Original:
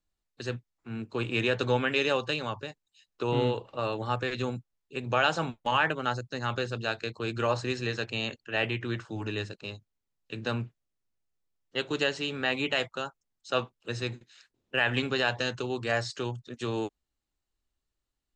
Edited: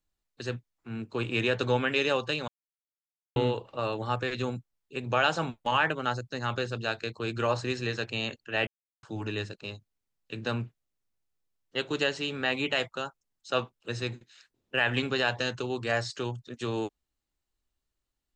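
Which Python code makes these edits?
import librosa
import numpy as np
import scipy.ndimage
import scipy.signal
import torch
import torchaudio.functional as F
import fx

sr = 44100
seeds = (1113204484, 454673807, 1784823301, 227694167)

y = fx.edit(x, sr, fx.silence(start_s=2.48, length_s=0.88),
    fx.silence(start_s=8.67, length_s=0.36), tone=tone)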